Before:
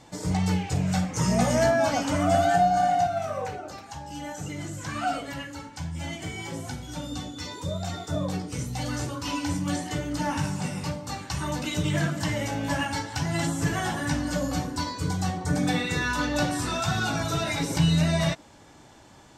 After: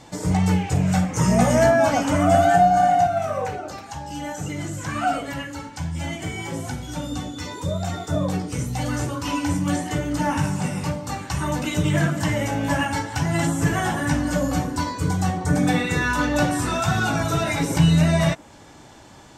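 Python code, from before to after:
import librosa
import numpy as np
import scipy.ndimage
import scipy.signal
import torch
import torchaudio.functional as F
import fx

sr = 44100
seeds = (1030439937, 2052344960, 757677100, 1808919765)

y = fx.dynamic_eq(x, sr, hz=4400.0, q=1.4, threshold_db=-49.0, ratio=4.0, max_db=-7)
y = F.gain(torch.from_numpy(y), 5.5).numpy()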